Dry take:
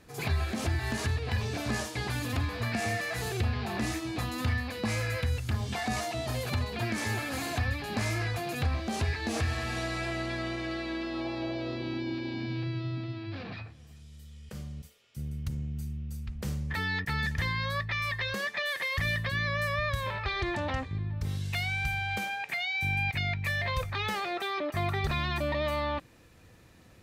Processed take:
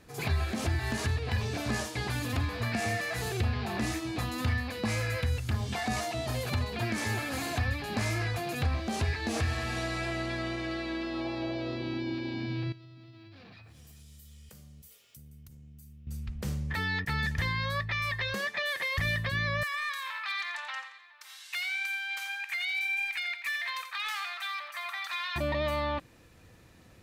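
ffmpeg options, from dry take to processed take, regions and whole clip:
-filter_complex "[0:a]asettb=1/sr,asplit=3[a][b][c];[a]atrim=end=12.724[d];[b]atrim=start=12.72:end=16.07,asetpts=PTS-STARTPTS,afade=t=in:d=0.004:c=qsin,afade=t=out:st=3.346:d=0.004:c=qsin,aemphasis=mode=production:type=50fm,acompressor=threshold=-48dB:ratio=12:attack=3.2:release=140:knee=1:detection=peak[e];[c]atrim=start=16.066[f];[d][e]acrossfade=d=0.004:c1=hsin:c2=qsin[g];[g][f]acrossfade=d=0.004:c1=qsin:c2=hsin,asettb=1/sr,asplit=3[h][i][j];[h]atrim=end=19.634[k];[i]atrim=start=19.63:end=25.36,asetpts=PTS-STARTPTS,afade=t=in:d=0.004:c=qsin,afade=t=out:st=5.726:d=0.004:c=qsin,highpass=f=1.1k:w=0.5412,highpass=f=1.1k:w=1.3066,volume=28dB,asoftclip=hard,volume=-28dB,aecho=1:1:86|172|258|344:0.316|0.108|0.0366|0.0124,atrim=end_sample=252693[l];[j]atrim=start=25.356[m];[k][l]acrossfade=d=0.004:c1=hsin:c2=qsin[n];[n][m]acrossfade=d=0.004:c1=qsin:c2=hsin"

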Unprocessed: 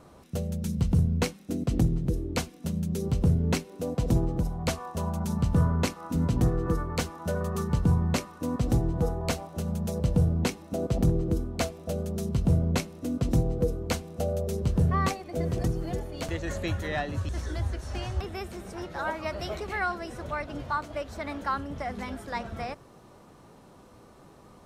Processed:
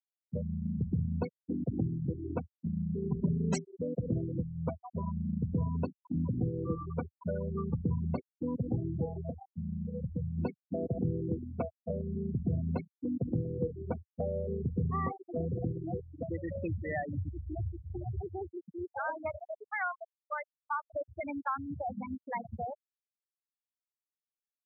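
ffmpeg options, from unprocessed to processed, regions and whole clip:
-filter_complex "[0:a]asettb=1/sr,asplit=3[a][b][c];[a]atrim=end=3.094[d];[b]atrim=start=3.09:end=3.78,asetpts=PTS-STARTPTS,afade=t=in:d=0.004:c=qsin,afade=t=out:st=0.686:d=0.004:c=qsin,equalizer=f=7.6k:t=o:w=0.97:g=7,aecho=1:1:5.1:0.99,atrim=end_sample=30429,acrusher=bits=3:mode=log:mix=0:aa=0.000001[e];[c]atrim=start=3.776[f];[d][e]acrossfade=d=0.004:c1=hsin:c2=qsin[g];[g][f]acrossfade=d=0.004:c1=qsin:c2=hsin,asettb=1/sr,asplit=3[h][i][j];[h]atrim=end=9.214[k];[i]atrim=start=9.21:end=10.38,asetpts=PTS-STARTPTS,afade=t=in:d=0.004:c=qsin,afade=t=out:st=1.166:d=0.004:c=qsin,lowpass=2.2k,acompressor=threshold=-33dB:ratio=2:attack=3.2:release=140:knee=1:detection=peak[l];[j]atrim=start=10.376[m];[k][l]acrossfade=d=0.004:c1=hsin:c2=qsin[n];[n][m]acrossfade=d=0.004:c1=qsin:c2=hsin,asettb=1/sr,asplit=3[o][p][q];[o]atrim=end=19.364[r];[p]atrim=start=19.36:end=20.75,asetpts=PTS-STARTPTS,afade=t=in:d=0.004:c=qsin,afade=t=out:st=1.386:d=0.004:c=qsin,highpass=660,lowpass=4.7k,agate=range=-33dB:threshold=-43dB:ratio=3:release=100:detection=peak[s];[q]atrim=start=20.746[t];[r][s]acrossfade=d=0.004:c1=hsin:c2=qsin[u];[u][t]acrossfade=d=0.004:c1=qsin:c2=hsin,afftfilt=real='re*gte(hypot(re,im),0.0891)':imag='im*gte(hypot(re,im),0.0891)':win_size=1024:overlap=0.75,highpass=f=85:w=0.5412,highpass=f=85:w=1.3066,acompressor=threshold=-37dB:ratio=2,volume=2dB"

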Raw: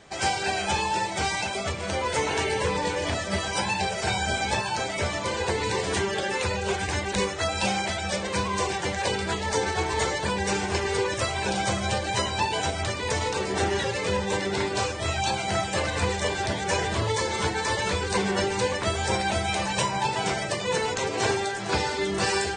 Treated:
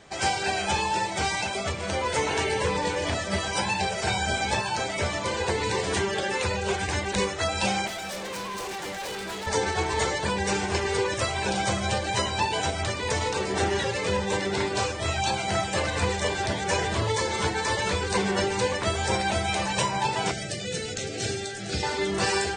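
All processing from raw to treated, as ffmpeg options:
-filter_complex "[0:a]asettb=1/sr,asplit=3[a][b][c];[a]atrim=end=7.874[d];[b]atrim=start=7.87:end=9.47,asetpts=PTS-STARTPTS,afade=t=in:d=0.004:c=qsin,afade=t=out:st=1.596:d=0.004:c=qsin,highpass=180,volume=32dB,asoftclip=hard,volume=-32dB[e];[c]atrim=start=9.466[f];[d][e]acrossfade=d=0.004:c1=hsin:c2=qsin[g];[g][f]acrossfade=d=0.004:c1=qsin:c2=hsin,asettb=1/sr,asplit=3[h][i][j];[h]atrim=end=20.314[k];[i]atrim=start=20.31:end=21.83,asetpts=PTS-STARTPTS,afade=t=in:d=0.004:c=qsin,afade=t=out:st=1.516:d=0.004:c=qsin,acrossover=split=300|3000[l][m][n];[m]acompressor=threshold=-40dB:ratio=2:attack=3.2:release=140:knee=2.83:detection=peak[o];[l][o][n]amix=inputs=3:normalize=0,asuperstop=centerf=1000:order=4:qfactor=2[p];[j]atrim=start=21.826[q];[k][p]acrossfade=d=0.004:c1=hsin:c2=qsin[r];[r][q]acrossfade=d=0.004:c1=qsin:c2=hsin"

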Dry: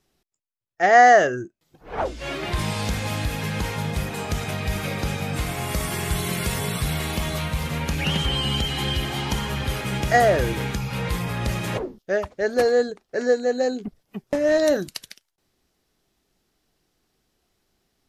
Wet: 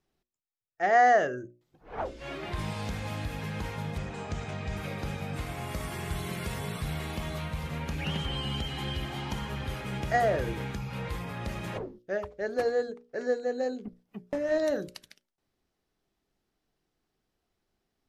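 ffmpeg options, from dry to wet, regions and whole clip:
-filter_complex "[0:a]asettb=1/sr,asplit=3[a][b][c];[a]atrim=end=3.984[d];[b]atrim=start=3.98:end=4.77,asetpts=PTS-STARTPTS,afade=t=in:d=0.004:c=qsin,afade=t=out:st=0.786:d=0.004:c=qsin,lowpass=f=7.4k:t=q:w=2.3,highshelf=f=5.8k:g=-11[e];[c]atrim=start=4.766[f];[d][e]acrossfade=d=0.004:c1=hsin:c2=qsin[g];[g][f]acrossfade=d=0.004:c1=qsin:c2=hsin,highshelf=f=3.5k:g=-8,bandreject=f=60:t=h:w=6,bandreject=f=120:t=h:w=6,bandreject=f=180:t=h:w=6,bandreject=f=240:t=h:w=6,bandreject=f=300:t=h:w=6,bandreject=f=360:t=h:w=6,bandreject=f=420:t=h:w=6,bandreject=f=480:t=h:w=6,bandreject=f=540:t=h:w=6,bandreject=f=600:t=h:w=6,volume=-7.5dB"

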